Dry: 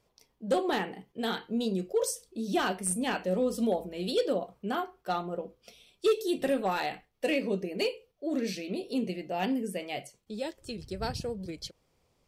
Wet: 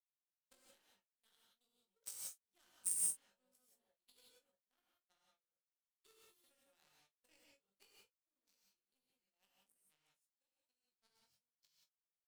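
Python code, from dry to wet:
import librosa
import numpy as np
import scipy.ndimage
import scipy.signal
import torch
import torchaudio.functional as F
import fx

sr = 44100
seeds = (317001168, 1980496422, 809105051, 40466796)

y = scipy.signal.sosfilt(scipy.signal.butter(2, 93.0, 'highpass', fs=sr, output='sos'), x)
y = F.preemphasis(torch.from_numpy(y), 0.9).numpy()
y = fx.power_curve(y, sr, exponent=3.0)
y = fx.room_early_taps(y, sr, ms=(20, 45), db=(-6.5, -15.0))
y = fx.rev_gated(y, sr, seeds[0], gate_ms=200, shape='rising', drr_db=-4.5)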